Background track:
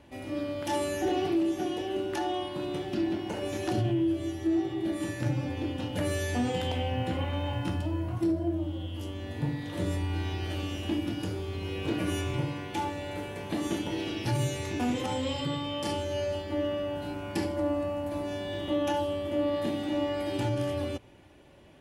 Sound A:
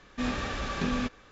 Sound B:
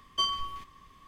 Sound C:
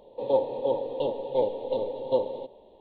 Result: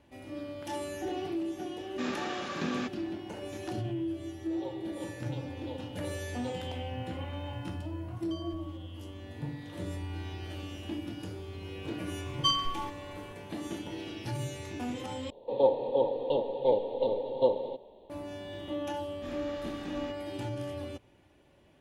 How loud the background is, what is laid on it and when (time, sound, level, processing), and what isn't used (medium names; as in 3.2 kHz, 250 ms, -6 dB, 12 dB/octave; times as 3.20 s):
background track -7 dB
1.80 s: add A -3.5 dB + high-pass 150 Hz 24 dB/octave
4.32 s: add C -16 dB + tilt EQ +4 dB/octave
8.13 s: add B -13 dB + compression, threshold -32 dBFS
12.26 s: add B -1 dB + comb 3.8 ms, depth 71%
15.30 s: replace with C -0.5 dB
19.04 s: add A -14.5 dB